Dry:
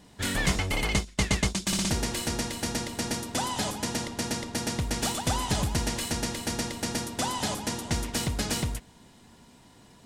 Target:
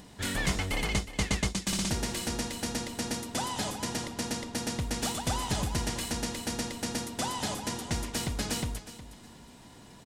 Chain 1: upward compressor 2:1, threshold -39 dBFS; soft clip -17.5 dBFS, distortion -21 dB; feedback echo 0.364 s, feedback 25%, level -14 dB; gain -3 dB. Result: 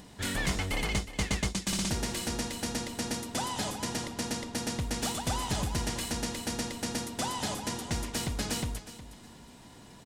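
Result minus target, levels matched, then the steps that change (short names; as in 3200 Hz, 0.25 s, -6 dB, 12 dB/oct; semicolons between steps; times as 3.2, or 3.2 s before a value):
soft clip: distortion +12 dB
change: soft clip -10.5 dBFS, distortion -33 dB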